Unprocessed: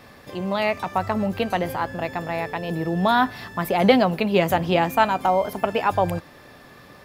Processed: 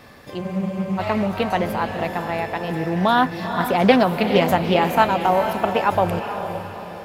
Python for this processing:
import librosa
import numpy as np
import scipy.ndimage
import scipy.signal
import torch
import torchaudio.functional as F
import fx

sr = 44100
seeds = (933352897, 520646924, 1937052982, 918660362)

y = fx.echo_diffused(x, sr, ms=453, feedback_pct=46, wet_db=-8.0)
y = fx.spec_freeze(y, sr, seeds[0], at_s=0.44, hold_s=0.55)
y = fx.doppler_dist(y, sr, depth_ms=0.2)
y = y * librosa.db_to_amplitude(1.5)